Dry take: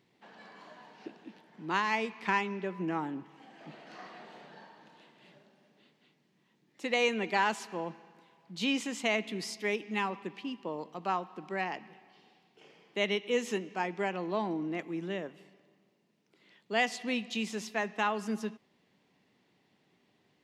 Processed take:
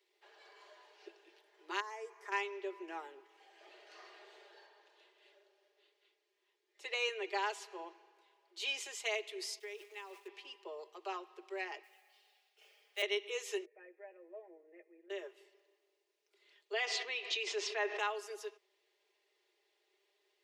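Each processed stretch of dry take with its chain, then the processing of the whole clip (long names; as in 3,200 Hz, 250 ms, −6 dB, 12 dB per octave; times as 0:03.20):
0:01.80–0:02.32: flat-topped bell 3,200 Hz −15 dB 1.3 octaves + downward compressor 3 to 1, threshold −34 dBFS + notch filter 2,600 Hz, Q 28
0:04.66–0:08.60: high-shelf EQ 6,500 Hz −7 dB + mains-hum notches 50/100/150/200/250/300/350 Hz
0:09.59–0:10.28: converter with a step at zero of −44.5 dBFS + downward expander −37 dBFS + downward compressor 12 to 1, threshold −37 dBFS
0:11.83–0:13.02: high-pass filter 550 Hz 24 dB per octave + notch filter 980 Hz, Q 5.2 + noise that follows the level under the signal 16 dB
0:13.65–0:15.10: formant resonators in series e + high-frequency loss of the air 460 metres + comb filter 6.3 ms, depth 76%
0:16.73–0:17.99: Gaussian smoothing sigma 1.7 samples + envelope flattener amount 70%
whole clip: Butterworth high-pass 340 Hz 96 dB per octave; parametric band 870 Hz −8 dB 2.6 octaves; comb filter 4.9 ms; level −3 dB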